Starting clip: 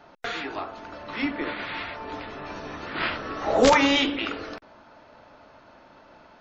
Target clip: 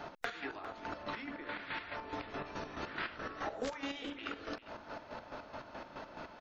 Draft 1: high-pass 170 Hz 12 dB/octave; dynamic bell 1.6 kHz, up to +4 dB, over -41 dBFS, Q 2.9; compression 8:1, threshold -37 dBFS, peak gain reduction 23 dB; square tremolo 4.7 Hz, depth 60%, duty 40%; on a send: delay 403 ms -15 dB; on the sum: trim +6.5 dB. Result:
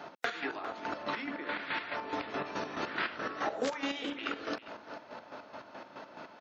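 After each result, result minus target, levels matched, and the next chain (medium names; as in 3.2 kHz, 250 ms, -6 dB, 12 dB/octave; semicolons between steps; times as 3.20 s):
125 Hz band -6.5 dB; compression: peak gain reduction -6 dB
dynamic bell 1.6 kHz, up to +4 dB, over -41 dBFS, Q 2.9; compression 8:1, threshold -37 dBFS, peak gain reduction 23.5 dB; square tremolo 4.7 Hz, depth 60%, duty 40%; on a send: delay 403 ms -15 dB; on the sum: trim +6.5 dB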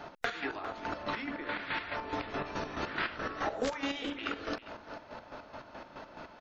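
compression: peak gain reduction -5.5 dB
dynamic bell 1.6 kHz, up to +4 dB, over -41 dBFS, Q 2.9; compression 8:1, threshold -43.5 dBFS, peak gain reduction 29 dB; square tremolo 4.7 Hz, depth 60%, duty 40%; on a send: delay 403 ms -15 dB; on the sum: trim +6.5 dB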